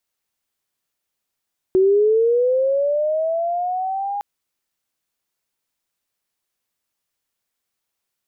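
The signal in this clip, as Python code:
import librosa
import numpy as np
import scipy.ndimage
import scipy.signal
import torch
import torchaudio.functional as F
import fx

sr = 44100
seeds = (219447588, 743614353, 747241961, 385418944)

y = fx.chirp(sr, length_s=2.46, from_hz=370.0, to_hz=820.0, law='linear', from_db=-11.0, to_db=-22.0)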